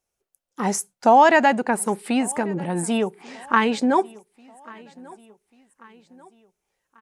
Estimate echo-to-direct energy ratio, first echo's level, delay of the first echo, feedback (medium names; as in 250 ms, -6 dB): -22.5 dB, -23.5 dB, 1140 ms, 48%